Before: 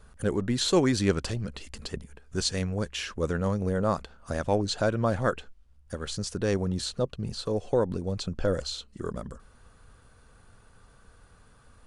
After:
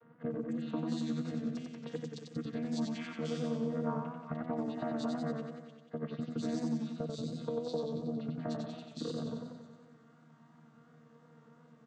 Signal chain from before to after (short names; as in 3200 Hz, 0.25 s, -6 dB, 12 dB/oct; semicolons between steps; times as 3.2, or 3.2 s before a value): chord vocoder bare fifth, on D#3; 3.7–4.34 fifteen-band EQ 160 Hz +6 dB, 1000 Hz +7 dB, 2500 Hz +11 dB, 6300 Hz -5 dB; compressor 6:1, threshold -35 dBFS, peak gain reduction 16.5 dB; bands offset in time lows, highs 0.3 s, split 3000 Hz; warbling echo 92 ms, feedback 63%, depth 74 cents, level -4 dB